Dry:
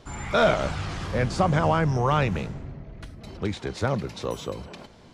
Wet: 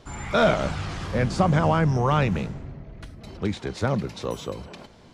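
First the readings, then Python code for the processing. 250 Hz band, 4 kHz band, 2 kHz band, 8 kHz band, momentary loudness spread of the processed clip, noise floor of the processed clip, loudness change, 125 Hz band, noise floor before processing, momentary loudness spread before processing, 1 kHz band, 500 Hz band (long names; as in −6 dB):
+3.0 dB, 0.0 dB, 0.0 dB, 0.0 dB, 20 LU, −50 dBFS, +1.0 dB, +2.0 dB, −50 dBFS, 20 LU, 0.0 dB, +0.5 dB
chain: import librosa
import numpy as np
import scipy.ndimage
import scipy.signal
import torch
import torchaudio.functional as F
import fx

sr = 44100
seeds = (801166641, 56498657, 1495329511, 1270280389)

y = fx.dynamic_eq(x, sr, hz=200.0, q=1.3, threshold_db=-34.0, ratio=4.0, max_db=4)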